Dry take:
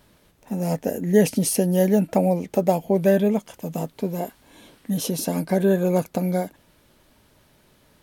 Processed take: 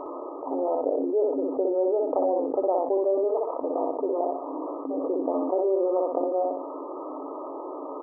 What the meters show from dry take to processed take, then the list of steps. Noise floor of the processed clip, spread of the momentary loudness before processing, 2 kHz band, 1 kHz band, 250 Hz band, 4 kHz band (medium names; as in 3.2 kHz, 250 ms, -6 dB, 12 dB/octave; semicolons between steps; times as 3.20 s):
-37 dBFS, 12 LU, under -35 dB, +1.5 dB, -8.0 dB, under -40 dB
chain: FFT band-pass 260–1300 Hz; on a send: feedback delay 62 ms, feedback 17%, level -4.5 dB; on the sum: level flattener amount 70%; trim -7.5 dB